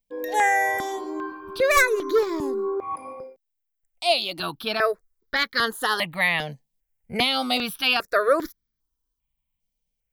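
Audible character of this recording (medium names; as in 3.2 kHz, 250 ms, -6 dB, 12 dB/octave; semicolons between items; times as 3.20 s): notches that jump at a steady rate 2.5 Hz 340–2700 Hz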